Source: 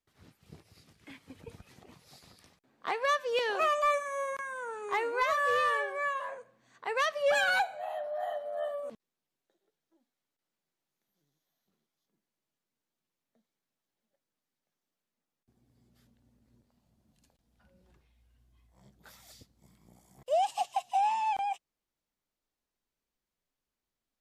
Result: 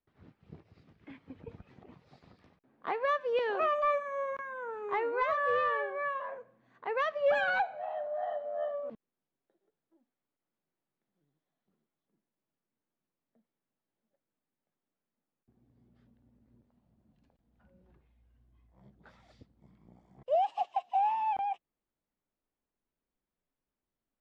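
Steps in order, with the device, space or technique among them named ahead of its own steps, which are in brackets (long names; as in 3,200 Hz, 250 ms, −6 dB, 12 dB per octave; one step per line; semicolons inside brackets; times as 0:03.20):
0:20.35–0:21.20: high-pass filter 310 Hz 12 dB per octave
phone in a pocket (low-pass filter 3,400 Hz 12 dB per octave; parametric band 250 Hz +2.5 dB 1.8 octaves; high-shelf EQ 2,500 Hz −10.5 dB)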